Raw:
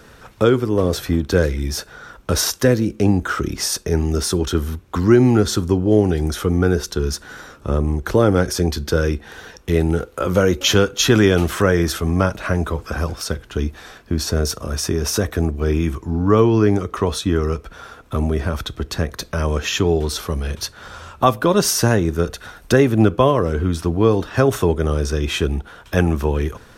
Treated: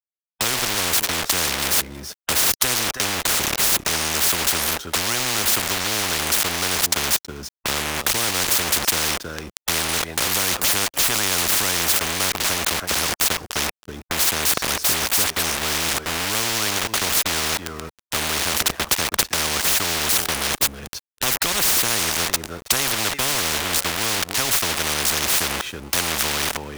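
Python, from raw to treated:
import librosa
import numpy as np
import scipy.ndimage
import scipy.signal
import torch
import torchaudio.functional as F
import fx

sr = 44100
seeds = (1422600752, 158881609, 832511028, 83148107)

p1 = fx.dispersion(x, sr, late='highs', ms=67.0, hz=1300.0, at=(14.76, 16.35))
p2 = np.where(np.abs(p1) >= 10.0 ** (-26.0 / 20.0), p1, 0.0)
p3 = p2 + fx.echo_single(p2, sr, ms=323, db=-23.5, dry=0)
y = fx.spectral_comp(p3, sr, ratio=10.0)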